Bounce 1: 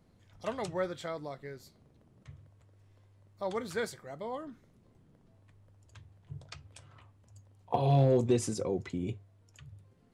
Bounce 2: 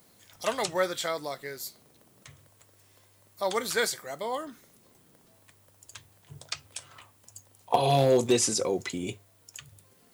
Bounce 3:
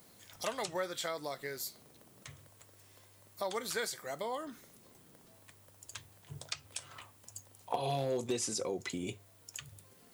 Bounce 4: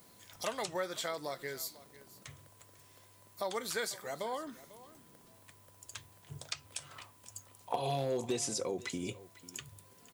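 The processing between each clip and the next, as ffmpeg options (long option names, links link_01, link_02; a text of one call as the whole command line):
ffmpeg -i in.wav -filter_complex "[0:a]acrossover=split=6400[link_01][link_02];[link_02]acompressor=threshold=-57dB:ratio=4:attack=1:release=60[link_03];[link_01][link_03]amix=inputs=2:normalize=0,aemphasis=mode=production:type=riaa,volume=8dB" out.wav
ffmpeg -i in.wav -af "acompressor=threshold=-37dB:ratio=2.5" out.wav
ffmpeg -i in.wav -af "aeval=exprs='val(0)+0.000316*sin(2*PI*1000*n/s)':channel_layout=same,aecho=1:1:497:0.119" out.wav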